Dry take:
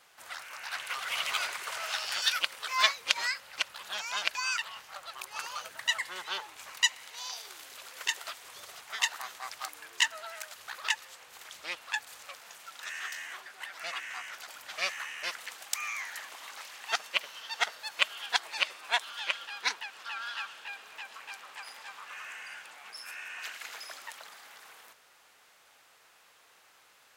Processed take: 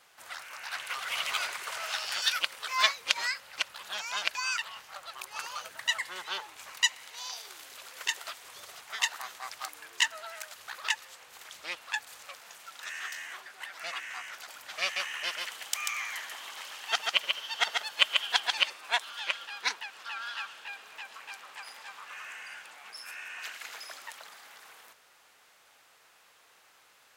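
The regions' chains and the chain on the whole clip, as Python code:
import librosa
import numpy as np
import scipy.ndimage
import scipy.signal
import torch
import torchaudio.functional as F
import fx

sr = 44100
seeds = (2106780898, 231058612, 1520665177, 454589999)

y = fx.chain(x, sr, fx.peak_eq(hz=3100.0, db=7.0, octaves=0.21),
    fx.echo_single(ms=139, db=-3.5), at=(14.82, 18.7))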